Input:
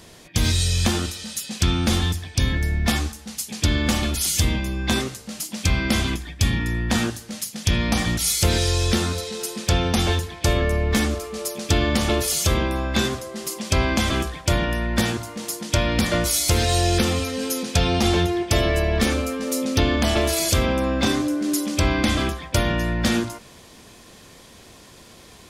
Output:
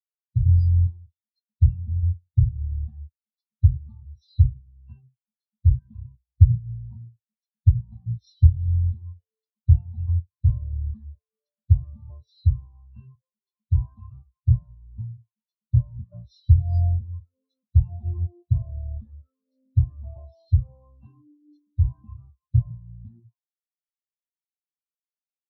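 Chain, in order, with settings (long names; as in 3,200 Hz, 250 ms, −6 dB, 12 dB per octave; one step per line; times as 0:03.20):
hearing-aid frequency compression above 1,600 Hz 1.5 to 1
graphic EQ with 10 bands 125 Hz +10 dB, 250 Hz −6 dB, 500 Hz −3 dB, 1,000 Hz +10 dB, 2,000 Hz −9 dB, 4,000 Hz +7 dB
every bin expanded away from the loudest bin 4 to 1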